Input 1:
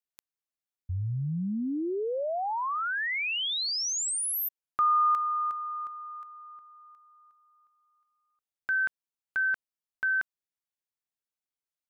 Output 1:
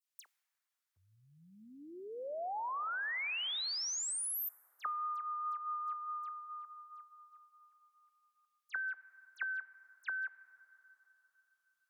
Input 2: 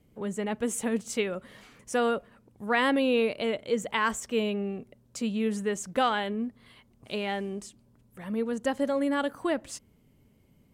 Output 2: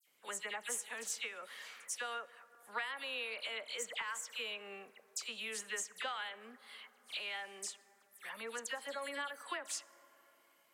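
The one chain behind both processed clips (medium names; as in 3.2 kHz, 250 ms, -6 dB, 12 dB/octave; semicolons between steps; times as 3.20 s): high-pass 1.3 kHz 12 dB/octave; compression 10:1, threshold -41 dBFS; phase dispersion lows, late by 72 ms, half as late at 2.9 kHz; vibrato 4.8 Hz 9.3 cents; plate-style reverb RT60 4.1 s, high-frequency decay 0.25×, DRR 17 dB; trim +4 dB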